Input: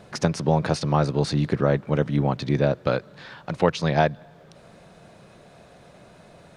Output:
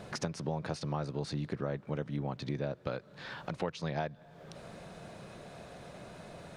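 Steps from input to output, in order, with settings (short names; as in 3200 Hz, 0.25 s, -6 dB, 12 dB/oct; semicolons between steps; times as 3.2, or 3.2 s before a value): compressor 2.5:1, threshold -41 dBFS, peak gain reduction 18 dB; gain +1 dB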